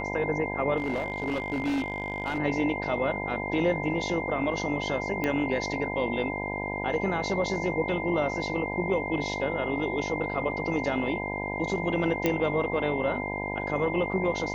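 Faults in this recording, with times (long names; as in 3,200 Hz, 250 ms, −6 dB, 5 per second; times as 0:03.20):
mains buzz 50 Hz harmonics 20 −34 dBFS
whistle 2,100 Hz −34 dBFS
0:00.77–0:02.39: clipping −24.5 dBFS
0:05.24: click −15 dBFS
0:12.26: click −11 dBFS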